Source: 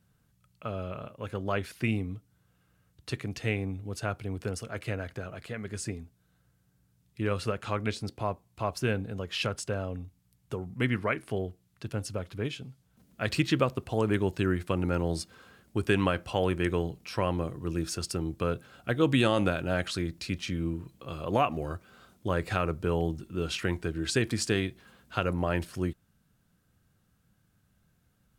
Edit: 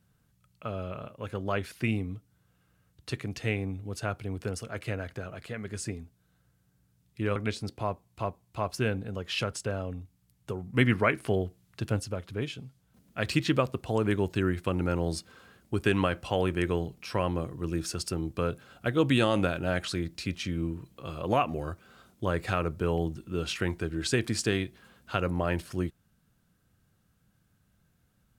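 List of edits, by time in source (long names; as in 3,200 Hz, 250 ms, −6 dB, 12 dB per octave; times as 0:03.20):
0:07.36–0:07.76: remove
0:08.28–0:08.65: repeat, 2 plays
0:10.77–0:12.03: clip gain +4.5 dB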